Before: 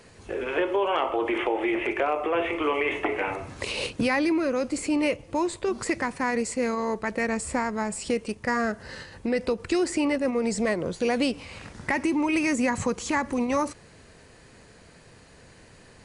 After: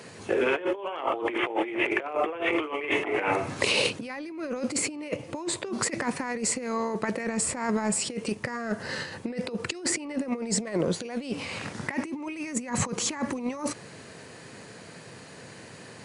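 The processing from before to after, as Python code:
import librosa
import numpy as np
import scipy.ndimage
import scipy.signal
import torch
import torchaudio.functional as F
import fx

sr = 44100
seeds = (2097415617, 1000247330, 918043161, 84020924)

y = scipy.signal.sosfilt(scipy.signal.butter(4, 110.0, 'highpass', fs=sr, output='sos'), x)
y = fx.over_compress(y, sr, threshold_db=-30.0, ratio=-0.5)
y = y * librosa.db_to_amplitude(2.0)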